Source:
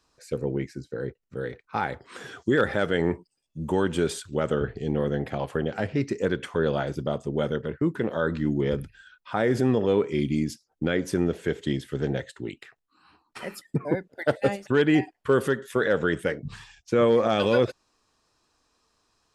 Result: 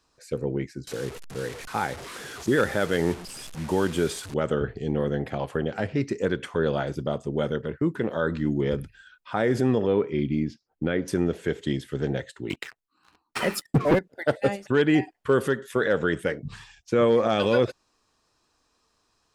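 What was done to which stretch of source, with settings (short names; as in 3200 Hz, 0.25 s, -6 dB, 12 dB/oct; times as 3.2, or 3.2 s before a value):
0.87–4.34 delta modulation 64 kbps, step -33.5 dBFS
9.87–11.08 air absorption 220 m
12.5–13.99 sample leveller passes 3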